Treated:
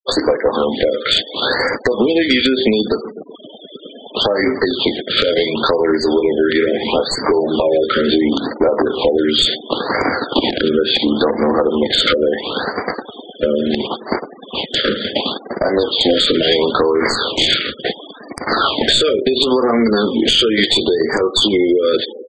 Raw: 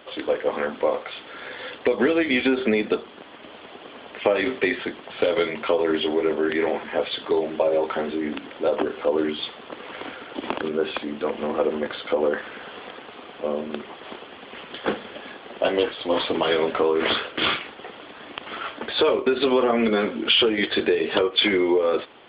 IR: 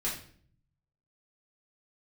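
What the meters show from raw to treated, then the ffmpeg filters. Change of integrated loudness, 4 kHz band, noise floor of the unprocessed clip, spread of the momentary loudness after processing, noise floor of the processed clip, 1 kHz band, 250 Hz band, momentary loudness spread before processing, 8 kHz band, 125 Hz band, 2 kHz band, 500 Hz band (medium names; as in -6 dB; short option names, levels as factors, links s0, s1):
+8.0 dB, +11.5 dB, -43 dBFS, 9 LU, -38 dBFS, +7.5 dB, +9.0 dB, 18 LU, no reading, +11.5 dB, +6.5 dB, +7.0 dB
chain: -filter_complex "[0:a]agate=range=0.2:threshold=0.0141:ratio=16:detection=peak,highpass=f=54:w=0.5412,highpass=f=54:w=1.3066,lowshelf=f=140:g=4.5,asplit=2[s0][s1];[s1]adelay=125,lowpass=f=1000:p=1,volume=0.0668,asplit=2[s2][s3];[s3]adelay=125,lowpass=f=1000:p=1,volume=0.51,asplit=2[s4][s5];[s5]adelay=125,lowpass=f=1000:p=1,volume=0.51[s6];[s2][s4][s6]amix=inputs=3:normalize=0[s7];[s0][s7]amix=inputs=2:normalize=0,adynamicequalizer=threshold=0.0126:dfrequency=640:dqfactor=3:tfrequency=640:tqfactor=3:attack=5:release=100:ratio=0.375:range=3.5:mode=cutabove:tftype=bell,acompressor=threshold=0.0251:ratio=16,aexciter=amount=15.8:drive=2.7:freq=4100,aeval=exprs='clip(val(0),-1,0.0335)':c=same,afftfilt=real='re*gte(hypot(re,im),0.00447)':imag='im*gte(hypot(re,im),0.00447)':win_size=1024:overlap=0.75,aresample=22050,aresample=44100,alimiter=level_in=14.1:limit=0.891:release=50:level=0:latency=1,afftfilt=real='re*(1-between(b*sr/1024,850*pow(3300/850,0.5+0.5*sin(2*PI*0.72*pts/sr))/1.41,850*pow(3300/850,0.5+0.5*sin(2*PI*0.72*pts/sr))*1.41))':imag='im*(1-between(b*sr/1024,850*pow(3300/850,0.5+0.5*sin(2*PI*0.72*pts/sr))/1.41,850*pow(3300/850,0.5+0.5*sin(2*PI*0.72*pts/sr))*1.41))':win_size=1024:overlap=0.75,volume=0.891"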